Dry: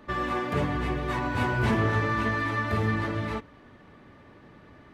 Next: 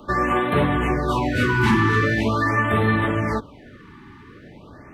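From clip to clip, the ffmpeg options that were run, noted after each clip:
-filter_complex "[0:a]acrossover=split=150|1200|3600[a][b][c][d];[a]asoftclip=type=tanh:threshold=-32dB[e];[e][b][c][d]amix=inputs=4:normalize=0,afftfilt=real='re*(1-between(b*sr/1024,550*pow(6000/550,0.5+0.5*sin(2*PI*0.43*pts/sr))/1.41,550*pow(6000/550,0.5+0.5*sin(2*PI*0.43*pts/sr))*1.41))':imag='im*(1-between(b*sr/1024,550*pow(6000/550,0.5+0.5*sin(2*PI*0.43*pts/sr))/1.41,550*pow(6000/550,0.5+0.5*sin(2*PI*0.43*pts/sr))*1.41))':win_size=1024:overlap=0.75,volume=8.5dB"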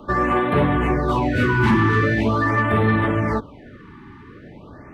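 -af "highshelf=f=3.1k:g=-9,acontrast=83,volume=-4.5dB"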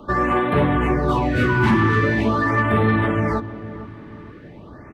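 -filter_complex "[0:a]asplit=2[a][b];[b]adelay=458,lowpass=f=970:p=1,volume=-13dB,asplit=2[c][d];[d]adelay=458,lowpass=f=970:p=1,volume=0.47,asplit=2[e][f];[f]adelay=458,lowpass=f=970:p=1,volume=0.47,asplit=2[g][h];[h]adelay=458,lowpass=f=970:p=1,volume=0.47,asplit=2[i][j];[j]adelay=458,lowpass=f=970:p=1,volume=0.47[k];[a][c][e][g][i][k]amix=inputs=6:normalize=0"

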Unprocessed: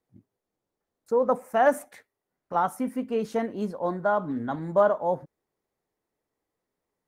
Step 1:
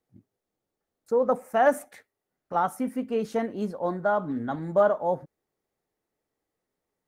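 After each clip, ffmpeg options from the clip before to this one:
-af "bandreject=f=1k:w=13"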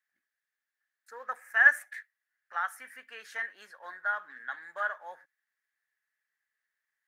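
-af "highpass=f=1.7k:t=q:w=9.9,volume=-5dB"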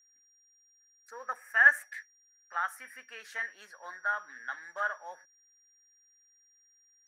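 -af "aeval=exprs='val(0)+0.000708*sin(2*PI*5700*n/s)':c=same"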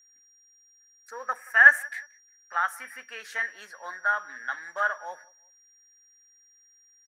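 -filter_complex "[0:a]asplit=2[a][b];[b]adelay=179,lowpass=f=2.9k:p=1,volume=-23.5dB,asplit=2[c][d];[d]adelay=179,lowpass=f=2.9k:p=1,volume=0.34[e];[a][c][e]amix=inputs=3:normalize=0,volume=6dB"

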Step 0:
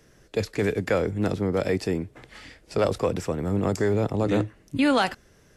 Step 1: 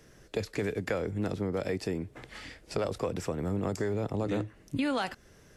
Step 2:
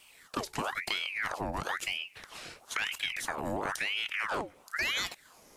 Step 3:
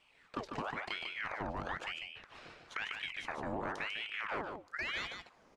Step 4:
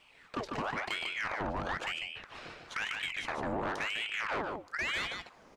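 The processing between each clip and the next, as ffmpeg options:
-af "acompressor=threshold=-30dB:ratio=3"
-af "crystalizer=i=2:c=0,aeval=exprs='val(0)*sin(2*PI*1600*n/s+1600*0.75/1*sin(2*PI*1*n/s))':c=same"
-af "adynamicsmooth=sensitivity=0.5:basefreq=3.3k,aecho=1:1:147:0.531,volume=-5dB"
-af "asoftclip=type=tanh:threshold=-33.5dB,volume=6.5dB"

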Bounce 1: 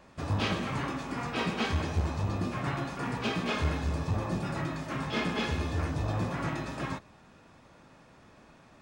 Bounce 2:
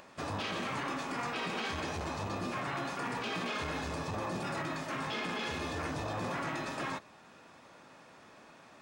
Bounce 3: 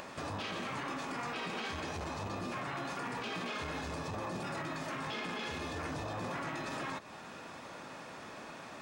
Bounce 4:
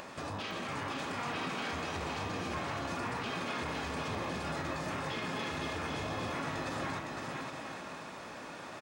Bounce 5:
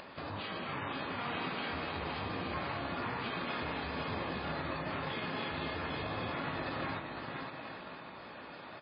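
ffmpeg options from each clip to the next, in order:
-af "highpass=f=400:p=1,alimiter=level_in=6.5dB:limit=-24dB:level=0:latency=1:release=13,volume=-6.5dB,acompressor=mode=upward:threshold=-55dB:ratio=2.5,volume=2.5dB"
-af "alimiter=level_in=15.5dB:limit=-24dB:level=0:latency=1:release=173,volume=-15.5dB,volume=8.5dB"
-af "aecho=1:1:510|816|999.6|1110|1176:0.631|0.398|0.251|0.158|0.1"
-af "aeval=exprs='0.0562*(cos(1*acos(clip(val(0)/0.0562,-1,1)))-cos(1*PI/2))+0.00251*(cos(7*acos(clip(val(0)/0.0562,-1,1)))-cos(7*PI/2))':c=same" -ar 11025 -c:a libmp3lame -b:a 16k

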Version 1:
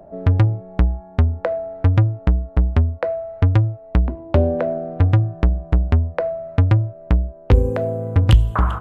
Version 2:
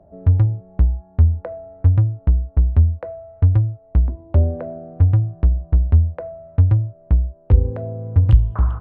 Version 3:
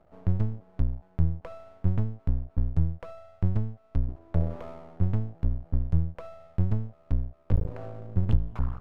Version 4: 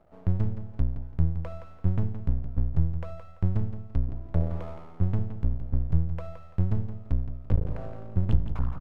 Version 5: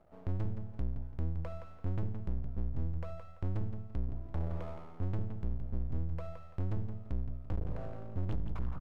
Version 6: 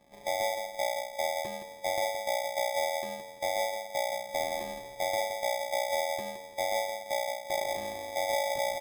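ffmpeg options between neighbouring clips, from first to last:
-af "lowpass=f=1.1k:p=1,equalizer=f=76:t=o:w=1.4:g=11.5,volume=-8dB"
-af "aeval=exprs='max(val(0),0)':c=same,volume=-7dB"
-af "aecho=1:1:169|338|507:0.316|0.0885|0.0248"
-af "asoftclip=type=tanh:threshold=-22.5dB,volume=-3.5dB"
-af "afftfilt=real='real(if(lt(b,920),b+92*(1-2*mod(floor(b/92),2)),b),0)':imag='imag(if(lt(b,920),b+92*(1-2*mod(floor(b/92),2)),b),0)':win_size=2048:overlap=0.75,acrusher=samples=31:mix=1:aa=0.000001"

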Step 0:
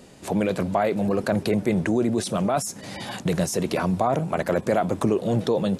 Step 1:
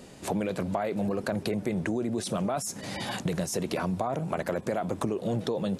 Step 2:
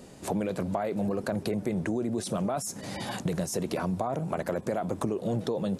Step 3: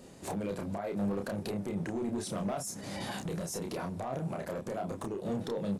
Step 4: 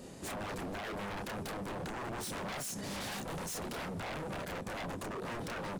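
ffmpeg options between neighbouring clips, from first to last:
-af "acompressor=threshold=-26dB:ratio=6"
-af "equalizer=f=2.7k:t=o:w=1.9:g=-4"
-filter_complex "[0:a]alimiter=limit=-20.5dB:level=0:latency=1:release=205,asoftclip=type=hard:threshold=-26.5dB,asplit=2[a][b];[b]adelay=30,volume=-4dB[c];[a][c]amix=inputs=2:normalize=0,volume=-4.5dB"
-af "aeval=exprs='0.0126*(abs(mod(val(0)/0.0126+3,4)-2)-1)':c=same,volume=3dB"

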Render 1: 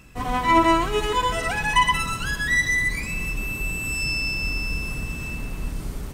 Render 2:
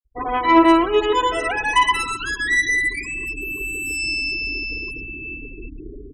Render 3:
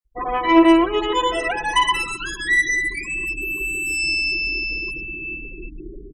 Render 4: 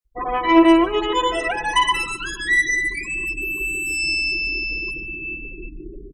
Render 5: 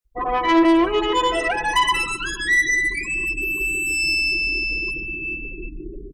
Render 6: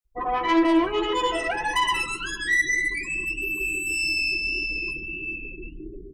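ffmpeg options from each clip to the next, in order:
-af "afftfilt=real='re*gte(hypot(re,im),0.0398)':imag='im*gte(hypot(re,im),0.0398)':win_size=1024:overlap=0.75,acontrast=32,lowshelf=f=250:t=q:w=3:g=-10,volume=-2.5dB"
-af "aecho=1:1:5.7:0.6,volume=-1.5dB"
-af "aecho=1:1:148:0.0891"
-af "asoftclip=type=tanh:threshold=-13dB,volume=2dB"
-af "flanger=delay=9.5:depth=4:regen=54:speed=1.7:shape=sinusoidal"

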